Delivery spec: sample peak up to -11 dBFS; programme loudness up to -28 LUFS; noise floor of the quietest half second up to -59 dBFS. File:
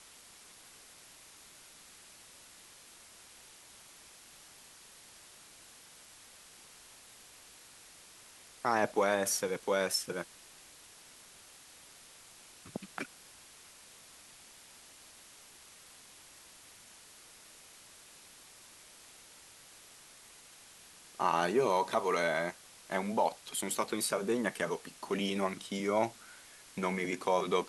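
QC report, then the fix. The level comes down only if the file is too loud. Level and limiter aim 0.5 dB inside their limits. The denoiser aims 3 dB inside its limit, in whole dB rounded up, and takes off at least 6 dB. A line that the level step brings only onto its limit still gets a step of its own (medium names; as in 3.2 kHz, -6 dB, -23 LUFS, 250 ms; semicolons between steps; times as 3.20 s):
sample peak -15.5 dBFS: pass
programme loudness -33.0 LUFS: pass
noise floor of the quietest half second -56 dBFS: fail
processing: noise reduction 6 dB, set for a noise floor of -56 dBFS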